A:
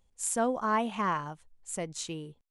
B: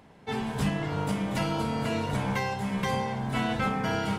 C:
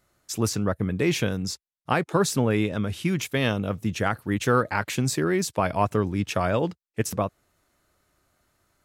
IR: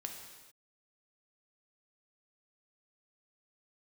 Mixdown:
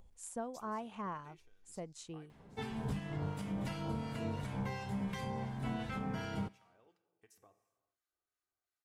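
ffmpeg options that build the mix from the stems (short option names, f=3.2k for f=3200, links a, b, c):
-filter_complex "[0:a]equalizer=f=780:t=o:w=1.9:g=4.5,acompressor=mode=upward:threshold=-40dB:ratio=2.5,volume=-13.5dB,asplit=2[a][b];[1:a]adelay=2300,volume=-7dB,asplit=2[c][d];[d]volume=-18.5dB[e];[2:a]acompressor=threshold=-32dB:ratio=10,lowshelf=f=300:g=-11.5,aecho=1:1:2.6:0.45,adelay=250,volume=-16dB,afade=t=in:st=6.66:d=0.28:silence=0.421697,asplit=2[f][g];[g]volume=-12.5dB[h];[b]apad=whole_len=401138[i];[f][i]sidechaingate=range=-13dB:threshold=-58dB:ratio=16:detection=peak[j];[a][c]amix=inputs=2:normalize=0,lowshelf=f=260:g=8.5,acompressor=threshold=-34dB:ratio=6,volume=0dB[k];[3:a]atrim=start_sample=2205[l];[e][h]amix=inputs=2:normalize=0[m];[m][l]afir=irnorm=-1:irlink=0[n];[j][k][n]amix=inputs=3:normalize=0,acrossover=split=1200[o][p];[o]aeval=exprs='val(0)*(1-0.5/2+0.5/2*cos(2*PI*2.8*n/s))':c=same[q];[p]aeval=exprs='val(0)*(1-0.5/2-0.5/2*cos(2*PI*2.8*n/s))':c=same[r];[q][r]amix=inputs=2:normalize=0"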